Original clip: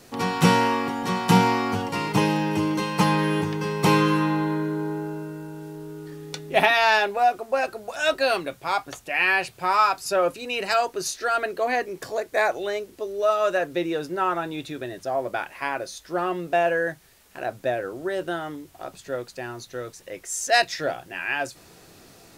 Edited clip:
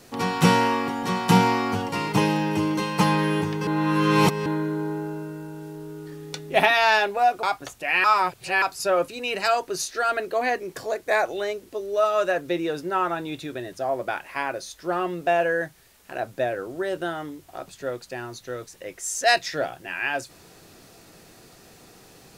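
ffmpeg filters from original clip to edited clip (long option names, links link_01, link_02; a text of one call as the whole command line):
ffmpeg -i in.wav -filter_complex "[0:a]asplit=6[link_01][link_02][link_03][link_04][link_05][link_06];[link_01]atrim=end=3.672[link_07];[link_02]atrim=start=3.668:end=4.462,asetpts=PTS-STARTPTS,areverse[link_08];[link_03]atrim=start=4.458:end=7.432[link_09];[link_04]atrim=start=8.688:end=9.302[link_10];[link_05]atrim=start=9.298:end=9.882,asetpts=PTS-STARTPTS,areverse[link_11];[link_06]atrim=start=9.878[link_12];[link_07][link_08]acrossfade=duration=0.004:curve1=hsin:curve2=hsin[link_13];[link_13][link_09]acrossfade=duration=0.004:curve1=hsin:curve2=hsin[link_14];[link_14][link_10]acrossfade=duration=0.004:curve1=hsin:curve2=hsin[link_15];[link_15][link_11]acrossfade=duration=0.004:curve1=hsin:curve2=hsin[link_16];[link_16][link_12]acrossfade=duration=0.004:curve1=hsin:curve2=hsin" out.wav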